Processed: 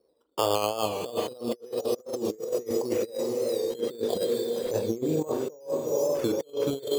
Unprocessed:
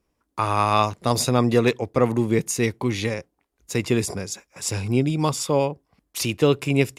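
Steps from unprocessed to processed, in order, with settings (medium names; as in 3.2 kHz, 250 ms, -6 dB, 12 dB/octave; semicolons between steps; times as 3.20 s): 0.93–1.61 s: jump at every zero crossing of -32 dBFS; reverb removal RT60 0.59 s; in parallel at +1.5 dB: peak limiter -16 dBFS, peak gain reduction 11.5 dB; on the sum: band-pass filter 490 Hz, Q 4.7; decimation with a swept rate 9×, swing 60% 0.34 Hz; echo that smears into a reverb 450 ms, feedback 59%, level -11 dB; on a send at -8 dB: reverberation, pre-delay 38 ms; on the sum: compressor with a negative ratio -32 dBFS, ratio -0.5; warped record 45 rpm, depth 100 cents; trim +3 dB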